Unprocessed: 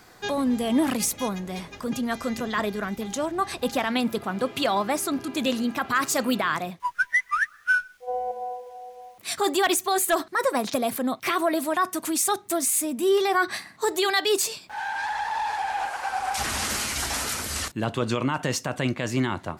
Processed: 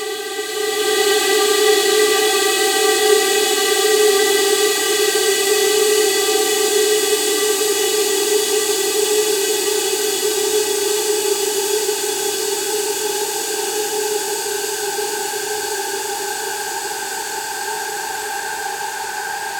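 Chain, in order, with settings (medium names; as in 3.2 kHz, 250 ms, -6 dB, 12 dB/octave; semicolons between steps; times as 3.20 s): Paulstretch 41×, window 1.00 s, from 14.29 s; repeats whose band climbs or falls 152 ms, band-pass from 210 Hz, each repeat 1.4 oct, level -3 dB; swelling reverb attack 970 ms, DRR -9.5 dB; trim -2 dB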